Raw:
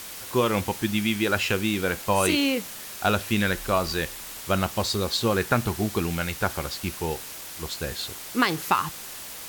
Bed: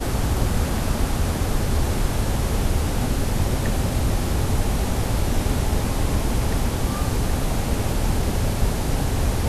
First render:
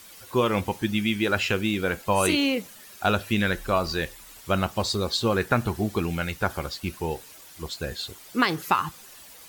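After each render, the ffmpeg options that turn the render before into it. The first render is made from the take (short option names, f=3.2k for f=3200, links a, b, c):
-af "afftdn=nr=11:nf=-39"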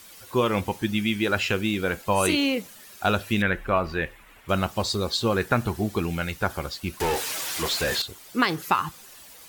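-filter_complex "[0:a]asettb=1/sr,asplit=3[a][b][c];[a]atrim=end=3.424[d];[b]atrim=start=3.42:end=4.49,asetpts=PTS-STARTPTS,afade=t=in:d=0.004:c=qsin,afade=t=out:st=1.066:d=0.004:c=qsin,highshelf=f=3.4k:t=q:w=1.5:g=-12.5[e];[c]atrim=start=4.486[f];[d][e]acrossfade=d=0.004:c1=hsin:c2=qsin[g];[g][f]acrossfade=d=0.004:c1=qsin:c2=hsin,asettb=1/sr,asplit=3[h][i][j];[h]atrim=end=7.004[k];[i]atrim=start=7:end=8.02,asetpts=PTS-STARTPTS,afade=t=in:d=0.004:c=qsin,afade=t=out:st=1.016:d=0.004:c=qsin,asplit=2[l][m];[m]highpass=f=720:p=1,volume=30dB,asoftclip=type=tanh:threshold=-18dB[n];[l][n]amix=inputs=2:normalize=0,lowpass=f=6.9k:p=1,volume=-6dB[o];[j]atrim=start=8.016[p];[k][o]acrossfade=d=0.004:c1=hsin:c2=qsin[q];[q][p]acrossfade=d=0.004:c1=qsin:c2=hsin"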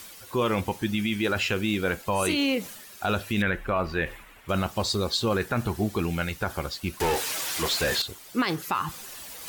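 -af "alimiter=limit=-15.5dB:level=0:latency=1:release=15,areverse,acompressor=mode=upward:threshold=-33dB:ratio=2.5,areverse"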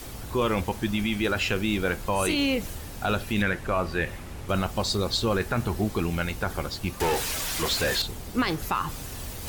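-filter_complex "[1:a]volume=-17dB[a];[0:a][a]amix=inputs=2:normalize=0"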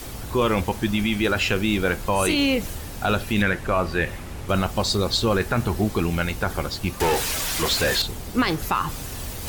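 -af "volume=4dB"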